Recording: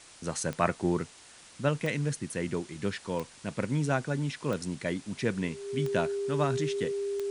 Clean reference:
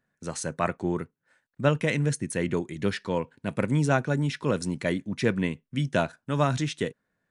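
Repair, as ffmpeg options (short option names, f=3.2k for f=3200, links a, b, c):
-af "adeclick=t=4,bandreject=f=400:w=30,afwtdn=0.0032,asetnsamples=n=441:p=0,asendcmd='1.53 volume volume 5dB',volume=0dB"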